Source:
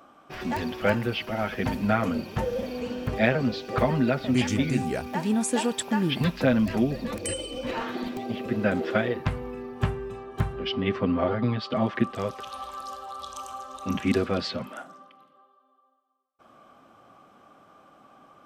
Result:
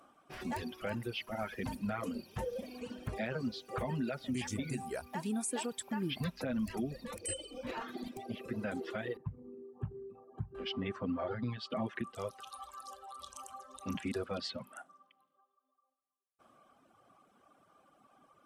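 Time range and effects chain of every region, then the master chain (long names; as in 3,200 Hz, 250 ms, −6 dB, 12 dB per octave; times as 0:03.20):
0:09.17–0:10.55: spectral envelope exaggerated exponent 2 + high-pass filter 99 Hz
whole clip: reverb reduction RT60 1.4 s; parametric band 9,700 Hz +10.5 dB 0.65 octaves; brickwall limiter −19 dBFS; level −8.5 dB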